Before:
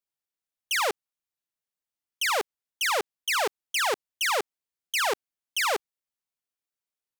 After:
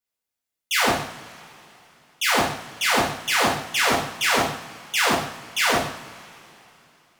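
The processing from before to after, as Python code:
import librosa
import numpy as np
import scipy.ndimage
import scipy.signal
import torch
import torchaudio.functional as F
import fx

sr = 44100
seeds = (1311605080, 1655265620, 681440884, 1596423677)

y = x * np.sin(2.0 * np.pi * 270.0 * np.arange(len(x)) / sr)
y = fx.rev_double_slope(y, sr, seeds[0], early_s=0.57, late_s=3.3, knee_db=-21, drr_db=-5.0)
y = fx.doppler_dist(y, sr, depth_ms=0.38)
y = y * 10.0 ** (3.0 / 20.0)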